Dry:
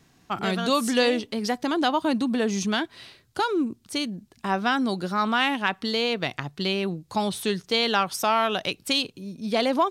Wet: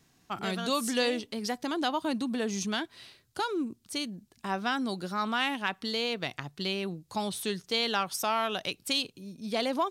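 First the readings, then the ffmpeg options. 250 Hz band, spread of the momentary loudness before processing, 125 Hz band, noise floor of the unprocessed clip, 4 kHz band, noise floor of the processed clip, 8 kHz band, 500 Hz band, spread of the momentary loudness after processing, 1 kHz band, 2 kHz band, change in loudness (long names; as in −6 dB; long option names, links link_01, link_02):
−7.0 dB, 7 LU, −7.0 dB, −61 dBFS, −5.0 dB, −67 dBFS, −2.5 dB, −7.0 dB, 7 LU, −6.5 dB, −6.0 dB, −6.0 dB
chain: -af "highshelf=frequency=4600:gain=6,volume=-7dB"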